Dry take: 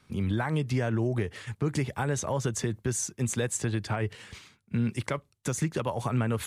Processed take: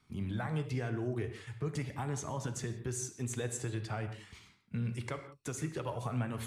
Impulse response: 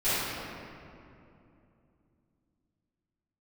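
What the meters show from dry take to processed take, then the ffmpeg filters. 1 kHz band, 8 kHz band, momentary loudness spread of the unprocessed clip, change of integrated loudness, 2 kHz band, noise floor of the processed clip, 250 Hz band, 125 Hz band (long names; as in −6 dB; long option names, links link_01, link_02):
−7.5 dB, −8.5 dB, 6 LU, −7.5 dB, −8.5 dB, −65 dBFS, −8.5 dB, −7.0 dB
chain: -filter_complex "[0:a]flanger=delay=0.9:depth=1.9:regen=-51:speed=0.46:shape=sinusoidal,asplit=2[link_01][link_02];[1:a]atrim=start_sample=2205,afade=type=out:start_time=0.23:duration=0.01,atrim=end_sample=10584[link_03];[link_02][link_03]afir=irnorm=-1:irlink=0,volume=-19dB[link_04];[link_01][link_04]amix=inputs=2:normalize=0,volume=-5dB"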